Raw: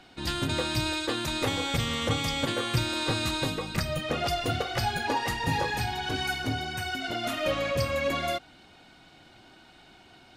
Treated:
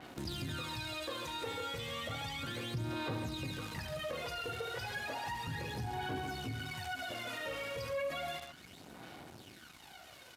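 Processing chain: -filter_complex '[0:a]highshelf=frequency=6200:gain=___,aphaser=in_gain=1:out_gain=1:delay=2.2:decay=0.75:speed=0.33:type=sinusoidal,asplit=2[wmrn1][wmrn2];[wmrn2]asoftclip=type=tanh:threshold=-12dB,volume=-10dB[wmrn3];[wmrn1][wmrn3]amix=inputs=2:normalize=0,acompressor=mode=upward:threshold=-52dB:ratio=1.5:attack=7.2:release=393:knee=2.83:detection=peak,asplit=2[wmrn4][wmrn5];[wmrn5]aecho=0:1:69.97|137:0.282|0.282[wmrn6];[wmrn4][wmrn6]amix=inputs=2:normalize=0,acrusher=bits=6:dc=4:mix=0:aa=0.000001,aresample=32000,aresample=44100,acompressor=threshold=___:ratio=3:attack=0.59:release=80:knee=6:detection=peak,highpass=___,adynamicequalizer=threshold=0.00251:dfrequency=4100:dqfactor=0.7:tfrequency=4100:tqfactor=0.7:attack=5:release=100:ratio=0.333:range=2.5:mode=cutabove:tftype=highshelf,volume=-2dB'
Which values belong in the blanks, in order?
-2.5, -38dB, 85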